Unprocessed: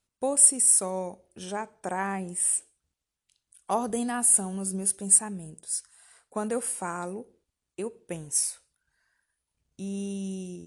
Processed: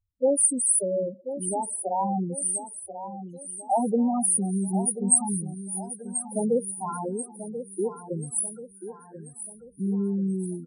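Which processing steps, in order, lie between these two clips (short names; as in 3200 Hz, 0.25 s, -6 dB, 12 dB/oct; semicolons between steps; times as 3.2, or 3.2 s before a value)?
loudest bins only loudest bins 4; feedback echo 1.036 s, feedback 45%, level -11 dB; gain +7.5 dB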